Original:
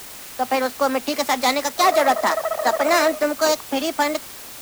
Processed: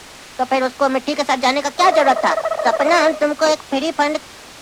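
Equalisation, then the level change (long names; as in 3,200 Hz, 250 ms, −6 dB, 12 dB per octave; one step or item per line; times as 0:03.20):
high-frequency loss of the air 75 metres
+4.0 dB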